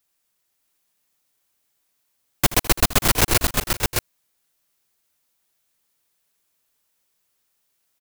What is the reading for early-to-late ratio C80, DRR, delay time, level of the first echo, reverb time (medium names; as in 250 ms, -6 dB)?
no reverb, no reverb, 79 ms, -16.5 dB, no reverb